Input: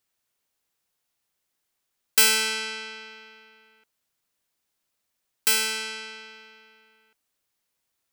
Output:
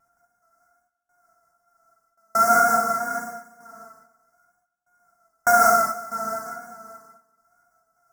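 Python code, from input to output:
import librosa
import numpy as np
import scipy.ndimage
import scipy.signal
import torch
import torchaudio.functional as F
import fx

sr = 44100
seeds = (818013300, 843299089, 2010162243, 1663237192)

p1 = np.r_[np.sort(x[:len(x) // 64 * 64].reshape(-1, 64), axis=1).ravel(), x[len(x) // 64 * 64:]]
p2 = fx.step_gate(p1, sr, bpm=179, pattern='x.x..xxx.....xx', floor_db=-60.0, edge_ms=4.5)
p3 = scipy.signal.sosfilt(scipy.signal.ellip(3, 1.0, 40, [1600.0, 5600.0], 'bandstop', fs=sr, output='sos'), p2)
p4 = fx.wow_flutter(p3, sr, seeds[0], rate_hz=2.1, depth_cents=66.0)
p5 = fx.over_compress(p4, sr, threshold_db=-34.0, ratio=-1.0)
p6 = p4 + F.gain(torch.from_numpy(p5), -0.5).numpy()
p7 = fx.band_shelf(p6, sr, hz=1400.0, db=9.5, octaves=1.7)
p8 = fx.echo_feedback(p7, sr, ms=239, feedback_pct=25, wet_db=-17)
p9 = fx.rev_gated(p8, sr, seeds[1], gate_ms=240, shape='flat', drr_db=-4.0)
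y = F.gain(torch.from_numpy(p9), -2.0).numpy()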